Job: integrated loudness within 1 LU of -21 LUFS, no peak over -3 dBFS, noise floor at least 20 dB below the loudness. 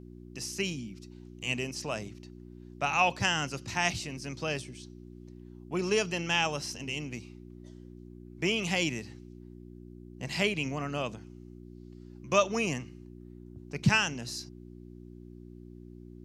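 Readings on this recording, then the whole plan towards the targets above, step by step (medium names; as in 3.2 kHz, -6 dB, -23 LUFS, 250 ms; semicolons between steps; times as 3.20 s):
hum 60 Hz; highest harmonic 360 Hz; hum level -46 dBFS; loudness -31.0 LUFS; peak level -10.5 dBFS; loudness target -21.0 LUFS
-> de-hum 60 Hz, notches 6; trim +10 dB; peak limiter -3 dBFS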